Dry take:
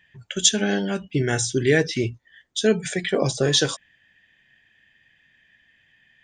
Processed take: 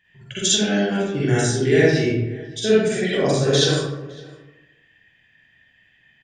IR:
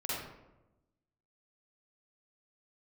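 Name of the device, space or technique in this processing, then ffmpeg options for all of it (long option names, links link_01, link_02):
bathroom: -filter_complex "[1:a]atrim=start_sample=2205[link_01];[0:a][link_01]afir=irnorm=-1:irlink=0,asplit=2[link_02][link_03];[link_03]adelay=559.8,volume=-21dB,highshelf=frequency=4000:gain=-12.6[link_04];[link_02][link_04]amix=inputs=2:normalize=0,volume=-1.5dB"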